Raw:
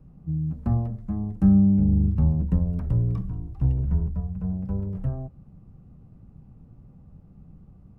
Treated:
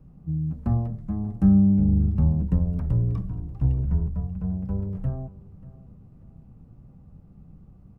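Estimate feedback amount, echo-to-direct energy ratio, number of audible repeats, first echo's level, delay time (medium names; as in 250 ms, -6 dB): 37%, -19.0 dB, 2, -19.5 dB, 587 ms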